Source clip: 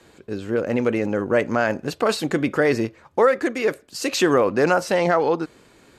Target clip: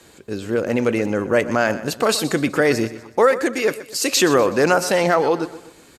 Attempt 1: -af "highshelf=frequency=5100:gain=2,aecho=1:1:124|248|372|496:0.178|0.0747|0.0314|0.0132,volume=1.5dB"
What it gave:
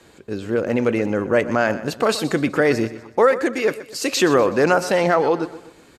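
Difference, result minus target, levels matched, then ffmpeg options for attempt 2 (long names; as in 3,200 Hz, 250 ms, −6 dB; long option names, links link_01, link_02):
8,000 Hz band −5.5 dB
-af "highshelf=frequency=5100:gain=11,aecho=1:1:124|248|372|496:0.178|0.0747|0.0314|0.0132,volume=1.5dB"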